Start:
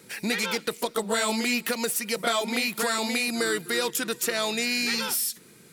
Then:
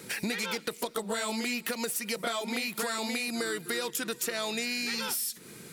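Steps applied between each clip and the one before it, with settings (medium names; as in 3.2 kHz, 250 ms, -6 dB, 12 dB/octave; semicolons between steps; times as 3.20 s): compression 4:1, threshold -37 dBFS, peak gain reduction 13.5 dB; trim +5.5 dB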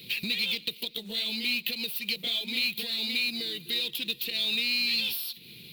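FFT filter 130 Hz 0 dB, 510 Hz -11 dB, 1.4 kHz -27 dB, 2.6 kHz +9 dB, 4.1 kHz +11 dB, 7 kHz -26 dB, 16 kHz +9 dB; short-mantissa float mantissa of 2-bit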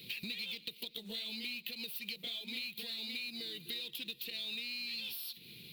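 compression 4:1, threshold -34 dBFS, peak gain reduction 9.5 dB; trim -5 dB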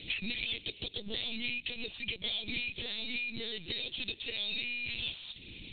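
LPC vocoder at 8 kHz pitch kept; trim +7 dB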